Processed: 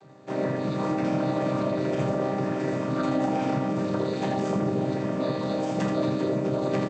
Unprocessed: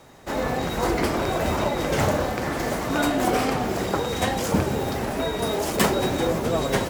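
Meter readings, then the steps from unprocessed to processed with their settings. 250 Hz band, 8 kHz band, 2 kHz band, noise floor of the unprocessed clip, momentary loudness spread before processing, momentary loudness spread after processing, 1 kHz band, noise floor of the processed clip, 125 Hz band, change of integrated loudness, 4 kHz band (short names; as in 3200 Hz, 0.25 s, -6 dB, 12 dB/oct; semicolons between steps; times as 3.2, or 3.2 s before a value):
0.0 dB, -16.0 dB, -9.5 dB, -29 dBFS, 5 LU, 2 LU, -5.5 dB, -30 dBFS, -1.5 dB, -3.0 dB, -11.5 dB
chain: chord vocoder minor triad, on C3; limiter -18 dBFS, peak gain reduction 9 dB; early reflections 29 ms -10 dB, 80 ms -6.5 dB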